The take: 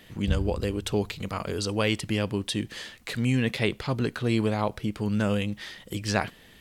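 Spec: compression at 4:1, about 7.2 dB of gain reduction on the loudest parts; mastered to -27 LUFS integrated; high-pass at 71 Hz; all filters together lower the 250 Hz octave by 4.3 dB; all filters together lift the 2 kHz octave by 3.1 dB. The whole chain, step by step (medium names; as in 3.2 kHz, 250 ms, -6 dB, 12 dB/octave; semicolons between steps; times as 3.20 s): high-pass 71 Hz; peaking EQ 250 Hz -5.5 dB; peaking EQ 2 kHz +4 dB; compression 4:1, threshold -28 dBFS; trim +6.5 dB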